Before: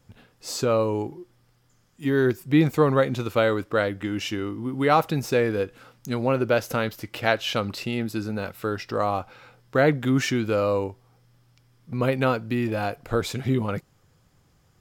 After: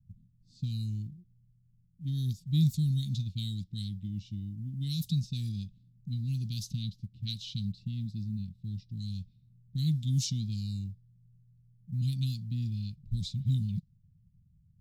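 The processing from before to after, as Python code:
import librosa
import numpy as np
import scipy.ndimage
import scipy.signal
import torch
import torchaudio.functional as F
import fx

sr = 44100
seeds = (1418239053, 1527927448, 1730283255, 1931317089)

y = fx.env_lowpass(x, sr, base_hz=400.0, full_db=-17.0)
y = scipy.signal.sosfilt(scipy.signal.cheby1(4, 1.0, [190.0, 3800.0], 'bandstop', fs=sr, output='sos'), y)
y = fx.quant_float(y, sr, bits=6)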